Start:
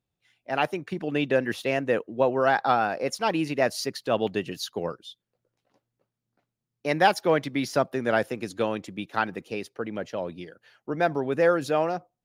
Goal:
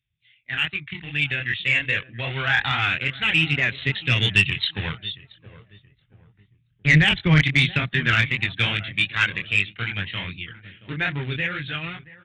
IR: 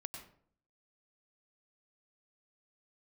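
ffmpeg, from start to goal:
-filter_complex "[0:a]asplit=2[link_01][link_02];[link_02]aeval=exprs='val(0)*gte(abs(val(0)),0.0501)':channel_layout=same,volume=-6.5dB[link_03];[link_01][link_03]amix=inputs=2:normalize=0,flanger=delay=20:depth=6:speed=2.5,alimiter=limit=-15.5dB:level=0:latency=1:release=25,asettb=1/sr,asplit=3[link_04][link_05][link_06];[link_04]atrim=end=5.054[link_07];[link_05]atrim=start=5.05:end=7.41,asetpts=PTS-STARTPTS,afade=type=in:duration=0.004:curve=qsin,afade=type=out:start_time=2.356:duration=0.004:curve=qsin,aemphasis=mode=reproduction:type=bsi[link_08];[link_06]atrim=start=7.406[link_09];[link_07][link_08]acrossfade=duration=0.004:curve1=hsin:curve2=qsin[link_10];[link_10][link_09]acrossfade=duration=0.004:curve1=qsin:curve2=hsin,dynaudnorm=framelen=370:gausssize=13:maxgain=10dB,highpass=42,asettb=1/sr,asplit=3[link_11][link_12][link_13];[link_11]atrim=end=2.974[link_14];[link_12]atrim=start=2.97:end=3.81,asetpts=PTS-STARTPTS,afade=type=in:duration=0.004:curve=qsin,afade=type=out:start_time=0.836:duration=0.004:curve=qsin,acompressor=threshold=-19dB:ratio=3[link_15];[link_13]atrim=start=3.806[link_16];[link_14][link_15]acrossfade=duration=0.004:curve1=hsin:curve2=qsin[link_17];[link_17][link_16]acrossfade=duration=0.004:curve1=qsin:curve2=hsin,firequalizer=gain_entry='entry(120,0);entry(220,-15);entry(570,-26);entry(2000,5)':delay=0.05:min_phase=1,asplit=2[link_18][link_19];[link_19]adelay=676,lowpass=frequency=1100:poles=1,volume=-17dB,asplit=2[link_20][link_21];[link_21]adelay=676,lowpass=frequency=1100:poles=1,volume=0.41,asplit=2[link_22][link_23];[link_23]adelay=676,lowpass=frequency=1100:poles=1,volume=0.41[link_24];[link_18][link_20][link_22][link_24]amix=inputs=4:normalize=0,aphaser=in_gain=1:out_gain=1:delay=1.9:decay=0.35:speed=0.27:type=triangular,aresample=8000,aresample=44100,asoftclip=type=tanh:threshold=-12.5dB,volume=6dB"

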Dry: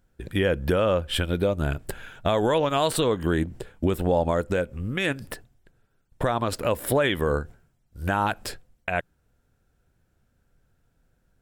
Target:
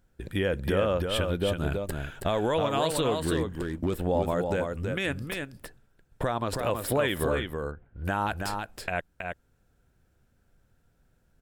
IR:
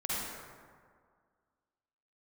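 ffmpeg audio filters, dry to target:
-filter_complex "[0:a]asplit=3[link_01][link_02][link_03];[link_01]afade=type=out:start_time=7.38:duration=0.02[link_04];[link_02]lowpass=frequency=2600:width=0.5412,lowpass=frequency=2600:width=1.3066,afade=type=in:start_time=7.38:duration=0.02,afade=type=out:start_time=8.04:duration=0.02[link_05];[link_03]afade=type=in:start_time=8.04:duration=0.02[link_06];[link_04][link_05][link_06]amix=inputs=3:normalize=0,asplit=2[link_07][link_08];[link_08]acompressor=threshold=-36dB:ratio=6,volume=-2dB[link_09];[link_07][link_09]amix=inputs=2:normalize=0,asettb=1/sr,asplit=3[link_10][link_11][link_12];[link_10]atrim=end=3.194[link_13];[link_11]atrim=start=3.19:end=4.04,asetpts=PTS-STARTPTS,afade=type=in:duration=0.004:curve=qsin,afade=type=out:start_time=0.846:duration=0.004:curve=qsin,asoftclip=type=hard:threshold=-14.5dB[link_14];[link_12]atrim=start=4.036[link_15];[link_13][link_14]acrossfade=duration=0.004:curve1=hsin:curve2=qsin[link_16];[link_16][link_15]acrossfade=duration=0.004:curve1=qsin:curve2=hsin,aecho=1:1:324:0.562,volume=-5.5dB"

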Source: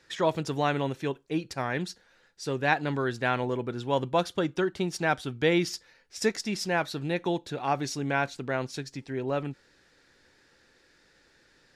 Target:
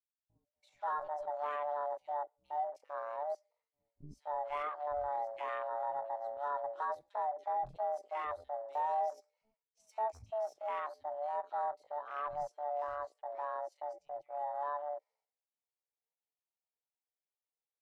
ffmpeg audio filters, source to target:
ffmpeg -i in.wav -filter_complex "[0:a]afreqshift=440,bandreject=frequency=60:width_type=h:width=6,bandreject=frequency=120:width_type=h:width=6,bandreject=frequency=180:width_type=h:width=6,bandreject=frequency=240:width_type=h:width=6,bandreject=frequency=300:width_type=h:width=6,bandreject=frequency=360:width_type=h:width=6,bandreject=frequency=420:width_type=h:width=6,bandreject=frequency=480:width_type=h:width=6,bandreject=frequency=540:width_type=h:width=6,bandreject=frequency=600:width_type=h:width=6,asoftclip=type=tanh:threshold=-22.5dB,acrossover=split=300|1900[link_01][link_02][link_03];[link_03]adelay=320[link_04];[link_02]adelay=360[link_05];[link_01][link_05][link_04]amix=inputs=3:normalize=0,agate=range=-33dB:threshold=-51dB:ratio=3:detection=peak,equalizer=frequency=3400:width=0.32:gain=-13,afwtdn=0.00891,atempo=0.66,highshelf=frequency=7700:gain=-9.5" out.wav

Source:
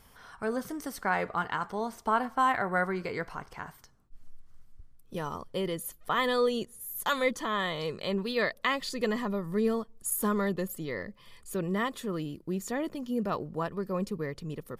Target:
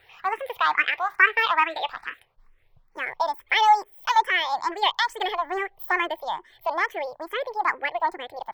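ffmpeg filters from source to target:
ffmpeg -i in.wav -filter_complex "[0:a]asetrate=76440,aresample=44100,lowshelf=frequency=140:gain=-5.5,aeval=exprs='0.188*(cos(1*acos(clip(val(0)/0.188,-1,1)))-cos(1*PI/2))+0.00596*(cos(7*acos(clip(val(0)/0.188,-1,1)))-cos(7*PI/2))':channel_layout=same,equalizer=frequency=125:width_type=o:width=1:gain=3,equalizer=frequency=250:width_type=o:width=1:gain=-11,equalizer=frequency=500:width_type=o:width=1:gain=7,equalizer=frequency=1000:width_type=o:width=1:gain=12,equalizer=frequency=2000:width_type=o:width=1:gain=9,equalizer=frequency=4000:width_type=o:width=1:gain=7,equalizer=frequency=8000:width_type=o:width=1:gain=-9,asplit=2[link_01][link_02];[link_02]afreqshift=2.3[link_03];[link_01][link_03]amix=inputs=2:normalize=1" out.wav

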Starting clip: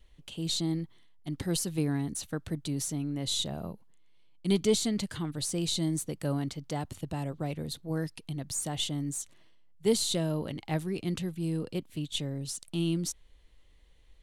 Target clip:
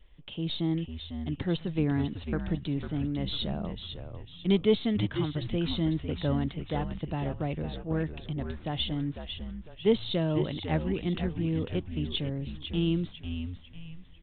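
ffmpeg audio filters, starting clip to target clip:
ffmpeg -i in.wav -filter_complex "[0:a]aresample=8000,aresample=44100,asplit=6[link_01][link_02][link_03][link_04][link_05][link_06];[link_02]adelay=499,afreqshift=-85,volume=-7.5dB[link_07];[link_03]adelay=998,afreqshift=-170,volume=-15.2dB[link_08];[link_04]adelay=1497,afreqshift=-255,volume=-23dB[link_09];[link_05]adelay=1996,afreqshift=-340,volume=-30.7dB[link_10];[link_06]adelay=2495,afreqshift=-425,volume=-38.5dB[link_11];[link_01][link_07][link_08][link_09][link_10][link_11]amix=inputs=6:normalize=0,volume=2dB" out.wav

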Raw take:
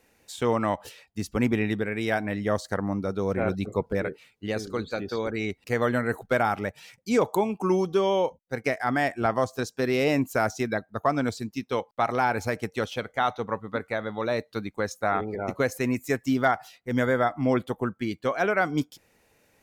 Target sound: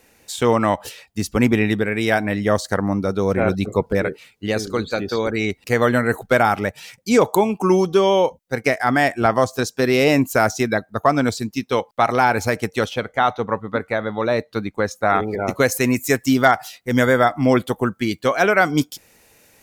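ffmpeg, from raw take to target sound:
ffmpeg -i in.wav -af "asetnsamples=nb_out_samples=441:pad=0,asendcmd='12.89 highshelf g -4;15.1 highshelf g 9',highshelf=frequency=3700:gain=4,volume=7.5dB" out.wav

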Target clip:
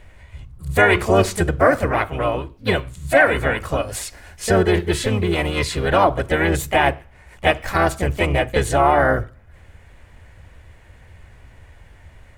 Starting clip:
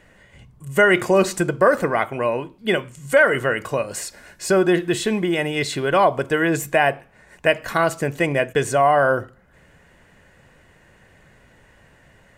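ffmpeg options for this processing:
ffmpeg -i in.wav -filter_complex "[0:a]asplit=4[link_01][link_02][link_03][link_04];[link_02]asetrate=22050,aresample=44100,atempo=2,volume=-8dB[link_05];[link_03]asetrate=52444,aresample=44100,atempo=0.840896,volume=-4dB[link_06];[link_04]asetrate=58866,aresample=44100,atempo=0.749154,volume=-16dB[link_07];[link_01][link_05][link_06][link_07]amix=inputs=4:normalize=0,lowshelf=frequency=120:width_type=q:width=1.5:gain=11.5,volume=-1dB" out.wav

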